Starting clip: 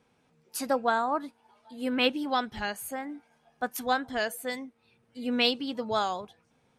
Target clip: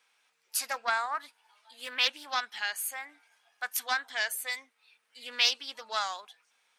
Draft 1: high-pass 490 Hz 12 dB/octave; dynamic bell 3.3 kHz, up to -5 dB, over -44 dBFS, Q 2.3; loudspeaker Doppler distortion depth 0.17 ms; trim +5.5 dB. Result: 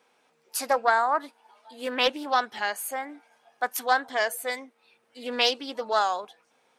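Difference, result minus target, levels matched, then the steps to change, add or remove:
500 Hz band +11.5 dB
change: high-pass 1.6 kHz 12 dB/octave

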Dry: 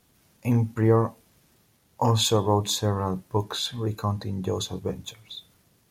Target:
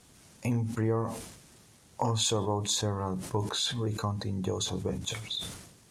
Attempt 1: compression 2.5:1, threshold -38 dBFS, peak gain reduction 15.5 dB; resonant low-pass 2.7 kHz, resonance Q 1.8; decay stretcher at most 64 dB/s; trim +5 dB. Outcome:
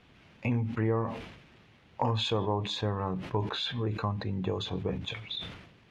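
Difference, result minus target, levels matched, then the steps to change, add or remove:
8 kHz band -19.0 dB
change: resonant low-pass 8.7 kHz, resonance Q 1.8

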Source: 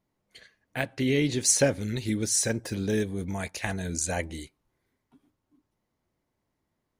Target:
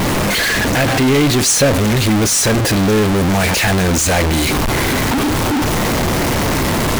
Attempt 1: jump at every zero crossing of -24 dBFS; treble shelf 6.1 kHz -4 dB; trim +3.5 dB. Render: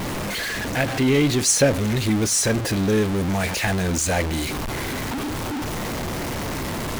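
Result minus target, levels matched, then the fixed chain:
jump at every zero crossing: distortion -6 dB
jump at every zero crossing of -12.5 dBFS; treble shelf 6.1 kHz -4 dB; trim +3.5 dB

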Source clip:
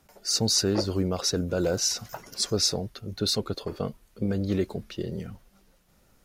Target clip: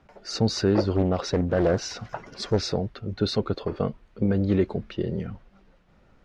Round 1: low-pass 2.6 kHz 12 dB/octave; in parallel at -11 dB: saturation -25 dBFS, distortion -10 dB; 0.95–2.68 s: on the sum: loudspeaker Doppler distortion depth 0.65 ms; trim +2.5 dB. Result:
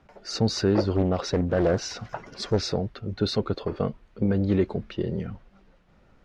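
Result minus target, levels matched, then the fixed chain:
saturation: distortion +7 dB
low-pass 2.6 kHz 12 dB/octave; in parallel at -11 dB: saturation -18.5 dBFS, distortion -17 dB; 0.95–2.68 s: on the sum: loudspeaker Doppler distortion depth 0.65 ms; trim +2.5 dB

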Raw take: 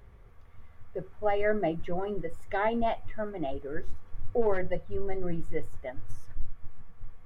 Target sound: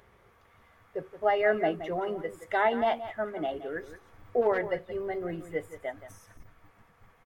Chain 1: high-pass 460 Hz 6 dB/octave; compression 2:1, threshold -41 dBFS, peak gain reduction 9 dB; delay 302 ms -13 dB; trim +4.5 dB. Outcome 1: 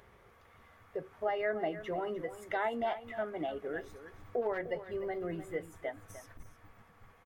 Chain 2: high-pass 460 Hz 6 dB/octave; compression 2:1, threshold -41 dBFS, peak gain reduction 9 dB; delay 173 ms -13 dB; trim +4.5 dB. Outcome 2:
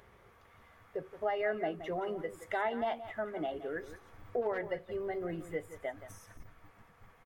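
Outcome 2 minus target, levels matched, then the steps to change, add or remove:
compression: peak gain reduction +9 dB
remove: compression 2:1, threshold -41 dBFS, peak gain reduction 9 dB

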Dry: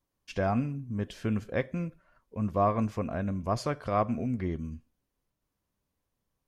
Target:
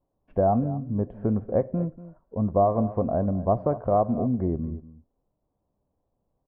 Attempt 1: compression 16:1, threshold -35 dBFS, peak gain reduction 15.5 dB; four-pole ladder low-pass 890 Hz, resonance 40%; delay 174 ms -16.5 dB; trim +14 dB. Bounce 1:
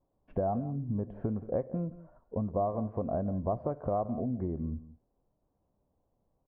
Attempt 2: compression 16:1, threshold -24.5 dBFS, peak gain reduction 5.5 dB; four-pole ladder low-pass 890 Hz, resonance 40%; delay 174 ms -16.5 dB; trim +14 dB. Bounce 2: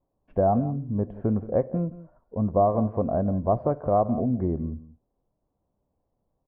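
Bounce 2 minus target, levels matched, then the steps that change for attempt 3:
echo 64 ms early
change: delay 238 ms -16.5 dB

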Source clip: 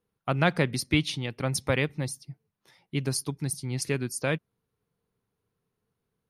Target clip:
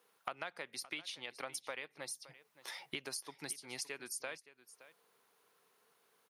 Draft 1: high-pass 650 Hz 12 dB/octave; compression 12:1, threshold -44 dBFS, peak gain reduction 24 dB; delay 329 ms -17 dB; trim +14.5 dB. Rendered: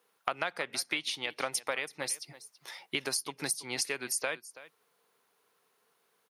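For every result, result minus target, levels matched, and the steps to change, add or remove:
compression: peak gain reduction -10 dB; echo 240 ms early
change: compression 12:1, threshold -55 dBFS, peak gain reduction 34.5 dB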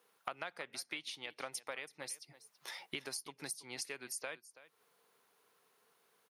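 echo 240 ms early
change: delay 569 ms -17 dB

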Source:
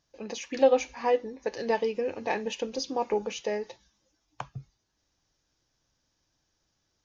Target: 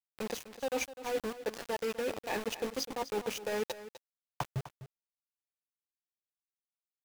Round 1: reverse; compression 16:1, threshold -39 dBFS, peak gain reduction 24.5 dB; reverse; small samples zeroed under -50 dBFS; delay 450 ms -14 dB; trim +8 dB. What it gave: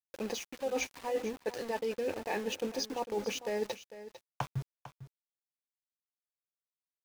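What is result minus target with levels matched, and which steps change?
echo 198 ms late; small samples zeroed: distortion -8 dB
change: small samples zeroed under -43 dBFS; change: delay 252 ms -14 dB

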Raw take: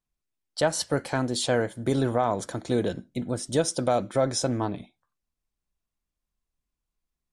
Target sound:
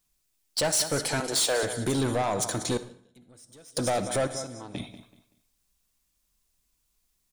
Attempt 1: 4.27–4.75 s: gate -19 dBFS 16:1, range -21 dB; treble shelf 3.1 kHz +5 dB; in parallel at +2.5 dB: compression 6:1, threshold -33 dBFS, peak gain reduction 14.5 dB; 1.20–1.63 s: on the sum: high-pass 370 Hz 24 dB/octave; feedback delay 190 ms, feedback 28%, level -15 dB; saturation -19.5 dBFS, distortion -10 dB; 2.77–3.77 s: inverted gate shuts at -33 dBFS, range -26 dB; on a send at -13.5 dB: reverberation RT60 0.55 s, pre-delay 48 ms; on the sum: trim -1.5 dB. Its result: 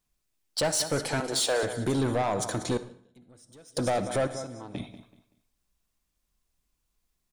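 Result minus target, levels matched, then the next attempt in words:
8 kHz band -2.5 dB
4.27–4.75 s: gate -19 dBFS 16:1, range -21 dB; treble shelf 3.1 kHz +13.5 dB; in parallel at +2.5 dB: compression 6:1, threshold -33 dBFS, peak gain reduction 18 dB; 1.20–1.63 s: on the sum: high-pass 370 Hz 24 dB/octave; feedback delay 190 ms, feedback 28%, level -15 dB; saturation -19.5 dBFS, distortion -9 dB; 2.77–3.77 s: inverted gate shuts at -33 dBFS, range -26 dB; on a send at -13.5 dB: reverberation RT60 0.55 s, pre-delay 48 ms; on the sum: trim -1.5 dB

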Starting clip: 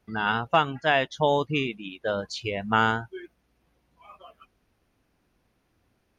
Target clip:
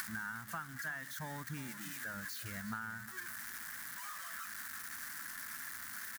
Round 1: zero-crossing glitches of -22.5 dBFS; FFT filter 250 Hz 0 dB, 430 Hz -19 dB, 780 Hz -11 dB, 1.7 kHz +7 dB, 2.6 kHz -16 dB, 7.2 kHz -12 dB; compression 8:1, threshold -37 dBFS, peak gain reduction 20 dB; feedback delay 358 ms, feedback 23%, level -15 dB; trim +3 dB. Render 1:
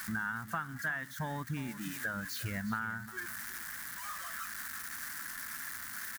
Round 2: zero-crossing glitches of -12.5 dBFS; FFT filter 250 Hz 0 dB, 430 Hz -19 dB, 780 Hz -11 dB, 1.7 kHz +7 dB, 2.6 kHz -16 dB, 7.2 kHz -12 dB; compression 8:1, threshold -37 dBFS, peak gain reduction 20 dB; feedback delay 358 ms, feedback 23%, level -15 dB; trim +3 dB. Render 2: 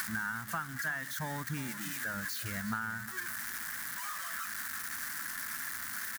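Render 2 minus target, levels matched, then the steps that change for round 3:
compression: peak gain reduction -6 dB
change: compression 8:1, threshold -44 dBFS, peak gain reduction 26.5 dB

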